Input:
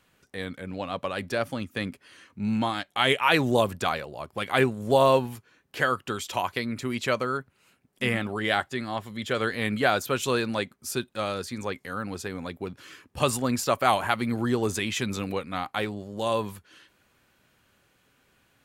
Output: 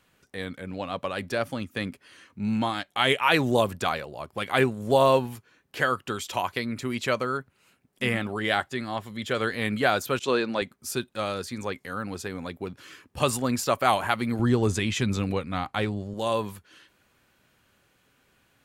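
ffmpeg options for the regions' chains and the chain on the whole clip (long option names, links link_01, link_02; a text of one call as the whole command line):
ffmpeg -i in.wav -filter_complex "[0:a]asettb=1/sr,asplit=3[link_01][link_02][link_03];[link_01]atrim=end=10.194[link_04];[link_02]atrim=start=10.19:end=10.62,asetpts=PTS-STARTPTS,afade=type=in:duration=0.004:curve=qsin,afade=type=out:start_time=0.426:duration=0.004:curve=qsin,agate=range=-33dB:threshold=-31dB:ratio=3:release=100:detection=peak,highpass=280,lowpass=5700,lowshelf=frequency=380:gain=6.5[link_05];[link_03]atrim=start=10.616[link_06];[link_04][link_05]acrossfade=duration=0.004:curve1=hsin:curve2=qsin[link_07];[link_07][link_06]acrossfade=duration=0.004:curve1=qsin:curve2=hsin,asettb=1/sr,asplit=3[link_08][link_09][link_10];[link_08]atrim=end=14.394[link_11];[link_09]atrim=start=14.39:end=16.14,asetpts=PTS-STARTPTS,afade=type=in:duration=0.004:curve=qsin,afade=type=out:start_time=1.746:duration=0.004:curve=qsin,lowpass=10000,lowshelf=frequency=150:gain=11.5[link_12];[link_10]atrim=start=16.136[link_13];[link_11][link_12]acrossfade=duration=0.004:curve1=hsin:curve2=qsin[link_14];[link_14][link_13]acrossfade=duration=0.004:curve1=qsin:curve2=hsin" out.wav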